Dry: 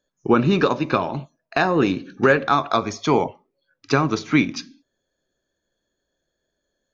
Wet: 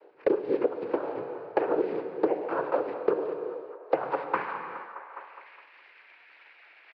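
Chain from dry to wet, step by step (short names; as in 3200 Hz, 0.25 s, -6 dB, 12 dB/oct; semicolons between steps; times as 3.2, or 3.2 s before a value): delta modulation 16 kbps, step -22.5 dBFS; gate -24 dBFS, range -55 dB; low shelf 260 Hz -12 dB; comb 2 ms, depth 71%; transient shaper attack +8 dB, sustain -1 dB; compressor 6:1, threshold -25 dBFS, peak gain reduction 18 dB; noise vocoder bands 8; band-pass sweep 440 Hz -> 2200 Hz, 3.59–5.19; band-limited delay 0.207 s, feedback 44%, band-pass 980 Hz, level -20 dB; non-linear reverb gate 0.45 s falling, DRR 8 dB; three-band squash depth 100%; gain +6.5 dB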